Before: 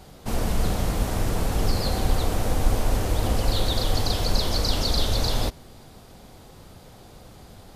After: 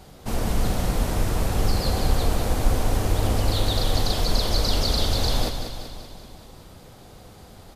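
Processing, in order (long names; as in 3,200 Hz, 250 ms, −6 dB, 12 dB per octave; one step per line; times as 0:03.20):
repeating echo 191 ms, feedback 59%, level −8 dB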